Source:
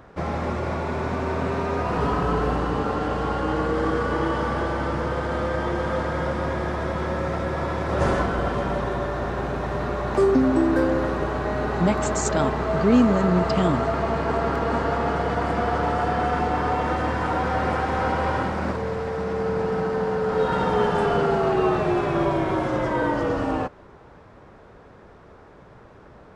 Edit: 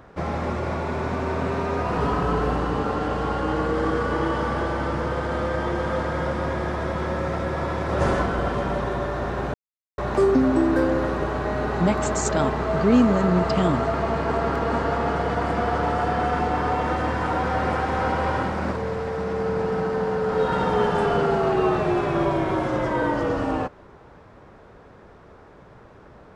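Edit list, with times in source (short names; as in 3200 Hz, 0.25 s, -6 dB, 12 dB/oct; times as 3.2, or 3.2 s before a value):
9.54–9.98 mute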